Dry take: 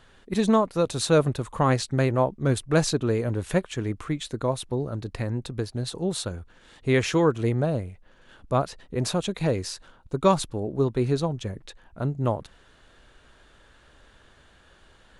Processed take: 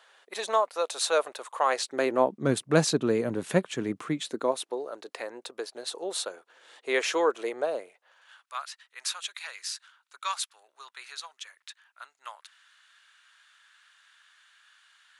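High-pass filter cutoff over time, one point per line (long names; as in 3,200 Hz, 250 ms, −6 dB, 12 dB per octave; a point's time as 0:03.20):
high-pass filter 24 dB per octave
0:01.64 560 Hz
0:02.49 160 Hz
0:04.05 160 Hz
0:04.81 440 Hz
0:07.85 440 Hz
0:08.53 1,300 Hz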